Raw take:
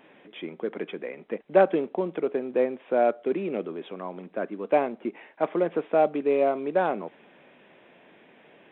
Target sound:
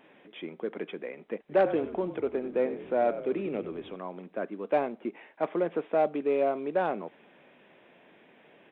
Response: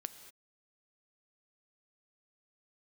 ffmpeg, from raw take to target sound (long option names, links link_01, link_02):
-filter_complex "[0:a]asplit=3[link_01][link_02][link_03];[link_01]afade=type=out:start_time=1.48:duration=0.02[link_04];[link_02]asplit=6[link_05][link_06][link_07][link_08][link_09][link_10];[link_06]adelay=95,afreqshift=-40,volume=-13dB[link_11];[link_07]adelay=190,afreqshift=-80,volume=-18.7dB[link_12];[link_08]adelay=285,afreqshift=-120,volume=-24.4dB[link_13];[link_09]adelay=380,afreqshift=-160,volume=-30dB[link_14];[link_10]adelay=475,afreqshift=-200,volume=-35.7dB[link_15];[link_05][link_11][link_12][link_13][link_14][link_15]amix=inputs=6:normalize=0,afade=type=in:start_time=1.48:duration=0.02,afade=type=out:start_time=3.95:duration=0.02[link_16];[link_03]afade=type=in:start_time=3.95:duration=0.02[link_17];[link_04][link_16][link_17]amix=inputs=3:normalize=0,asoftclip=type=tanh:threshold=-11dB,volume=-3dB"